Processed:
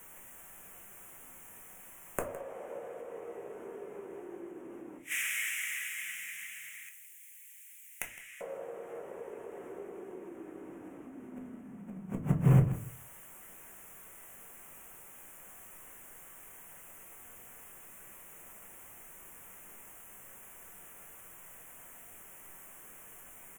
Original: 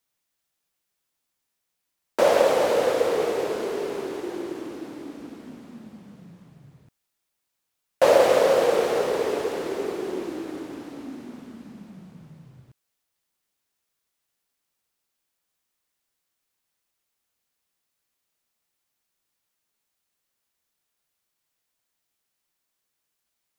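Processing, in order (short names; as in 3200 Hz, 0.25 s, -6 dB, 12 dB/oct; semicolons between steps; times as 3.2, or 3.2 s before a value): 4.97–8.41 elliptic high-pass 2000 Hz, stop band 60 dB; compressor 5:1, threshold -44 dBFS, peak gain reduction 26 dB; flipped gate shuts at -40 dBFS, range -31 dB; sine folder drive 16 dB, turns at -27 dBFS; Butterworth band-stop 4400 Hz, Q 0.89; echo 0.162 s -16 dB; shoebox room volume 170 m³, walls furnished, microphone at 1.1 m; gain +8 dB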